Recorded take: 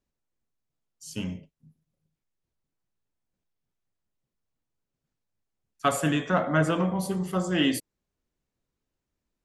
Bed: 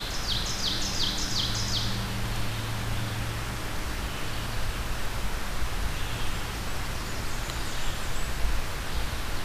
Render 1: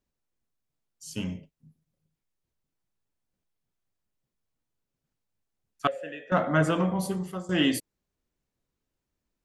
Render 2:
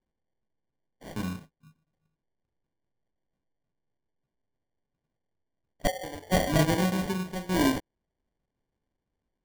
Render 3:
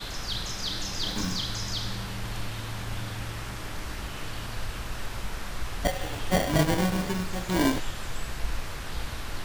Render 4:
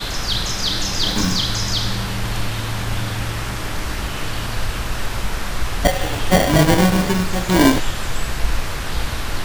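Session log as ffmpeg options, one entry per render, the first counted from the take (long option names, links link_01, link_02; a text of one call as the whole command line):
ffmpeg -i in.wav -filter_complex "[0:a]asettb=1/sr,asplit=3[link_01][link_02][link_03];[link_01]atrim=end=5.874[link_04];[link_02]atrim=start=5.87:end=6.32,asetpts=PTS-STARTPTS,afade=type=in:duration=0.004:curve=qsin,afade=type=out:start_time=0.446:duration=0.004:curve=qsin,asplit=3[link_05][link_06][link_07];[link_05]bandpass=frequency=530:width_type=q:width=8,volume=0dB[link_08];[link_06]bandpass=frequency=1840:width_type=q:width=8,volume=-6dB[link_09];[link_07]bandpass=frequency=2480:width_type=q:width=8,volume=-9dB[link_10];[link_08][link_09][link_10]amix=inputs=3:normalize=0[link_11];[link_03]atrim=start=6.316[link_12];[link_04][link_11]acrossfade=duration=0.004:curve1=hsin:curve2=qsin[link_13];[link_13][link_12]acrossfade=duration=0.004:curve1=qsin:curve2=hsin,asplit=2[link_14][link_15];[link_14]atrim=end=7.49,asetpts=PTS-STARTPTS,afade=type=out:start_time=7.06:duration=0.43:silence=0.16788[link_16];[link_15]atrim=start=7.49,asetpts=PTS-STARTPTS,afade=type=in:duration=0.004:curve=hsin:silence=0.16788[link_17];[link_16][link_17]concat=n=2:v=0:a=1" out.wav
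ffmpeg -i in.wav -af "acrusher=samples=34:mix=1:aa=0.000001" out.wav
ffmpeg -i in.wav -i bed.wav -filter_complex "[1:a]volume=-3.5dB[link_01];[0:a][link_01]amix=inputs=2:normalize=0" out.wav
ffmpeg -i in.wav -af "volume=11dB,alimiter=limit=-3dB:level=0:latency=1" out.wav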